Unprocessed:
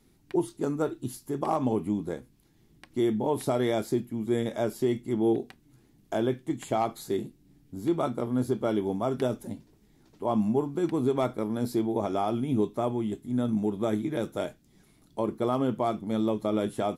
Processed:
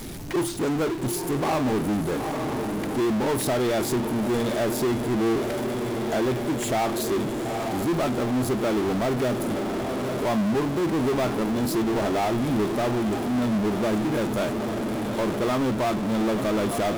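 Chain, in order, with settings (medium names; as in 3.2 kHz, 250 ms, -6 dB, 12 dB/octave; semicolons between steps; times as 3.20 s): echo that smears into a reverb 876 ms, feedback 64%, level -13 dB; power-law waveshaper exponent 0.35; trim -3.5 dB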